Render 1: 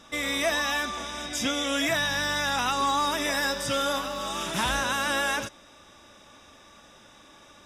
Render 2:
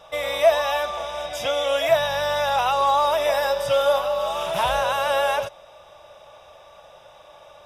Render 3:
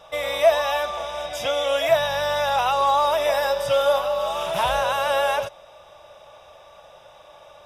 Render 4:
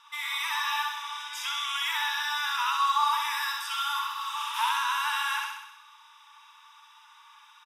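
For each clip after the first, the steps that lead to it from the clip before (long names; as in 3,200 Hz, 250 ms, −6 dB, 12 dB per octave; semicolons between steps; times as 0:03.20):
drawn EQ curve 160 Hz 0 dB, 250 Hz −18 dB, 600 Hz +14 dB, 1,800 Hz −3 dB, 2,800 Hz +3 dB, 7,300 Hz −8 dB, 13,000 Hz +2 dB
no processing that can be heard
linear-phase brick-wall high-pass 860 Hz; repeating echo 64 ms, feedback 60%, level −3.5 dB; level −4 dB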